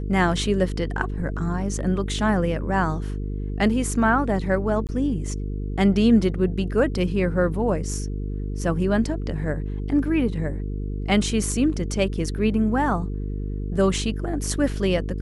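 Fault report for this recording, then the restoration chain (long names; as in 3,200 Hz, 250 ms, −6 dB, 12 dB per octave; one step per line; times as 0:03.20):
mains buzz 50 Hz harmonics 9 −28 dBFS
0:04.87–0:04.89: drop-out 18 ms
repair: hum removal 50 Hz, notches 9
repair the gap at 0:04.87, 18 ms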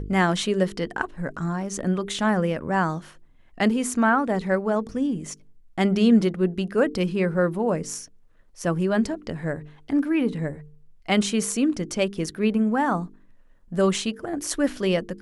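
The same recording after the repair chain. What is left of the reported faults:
none of them is left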